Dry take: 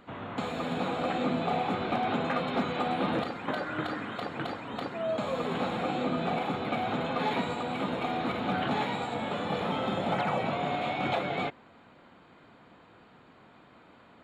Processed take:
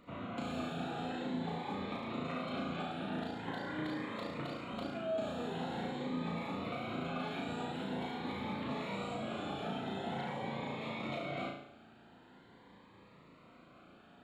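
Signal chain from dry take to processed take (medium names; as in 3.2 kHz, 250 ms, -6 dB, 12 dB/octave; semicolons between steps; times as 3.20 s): compression, threshold -32 dBFS, peak gain reduction 8.5 dB; flutter echo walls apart 6.1 m, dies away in 0.66 s; Shepard-style phaser rising 0.45 Hz; trim -4.5 dB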